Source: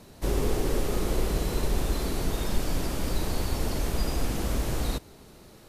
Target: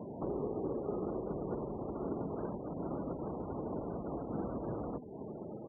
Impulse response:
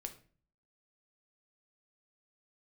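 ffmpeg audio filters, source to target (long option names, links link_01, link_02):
-filter_complex "[0:a]lowpass=1100,asplit=2[link_01][link_02];[link_02]alimiter=level_in=0.5dB:limit=-24dB:level=0:latency=1:release=84,volume=-0.5dB,volume=-2dB[link_03];[link_01][link_03]amix=inputs=2:normalize=0,acompressor=threshold=-34dB:ratio=6,asplit=2[link_04][link_05];[link_05]asplit=4[link_06][link_07][link_08][link_09];[link_06]adelay=90,afreqshift=-34,volume=-12.5dB[link_10];[link_07]adelay=180,afreqshift=-68,volume=-20.5dB[link_11];[link_08]adelay=270,afreqshift=-102,volume=-28.4dB[link_12];[link_09]adelay=360,afreqshift=-136,volume=-36.4dB[link_13];[link_10][link_11][link_12][link_13]amix=inputs=4:normalize=0[link_14];[link_04][link_14]amix=inputs=2:normalize=0,afftfilt=real='re*gte(hypot(re,im),0.00501)':imag='im*gte(hypot(re,im),0.00501)':win_size=1024:overlap=0.75,highpass=160,bandreject=frequency=252.1:width_type=h:width=4,bandreject=frequency=504.2:width_type=h:width=4,bandreject=frequency=756.3:width_type=h:width=4,bandreject=frequency=1008.4:width_type=h:width=4,volume=4.5dB"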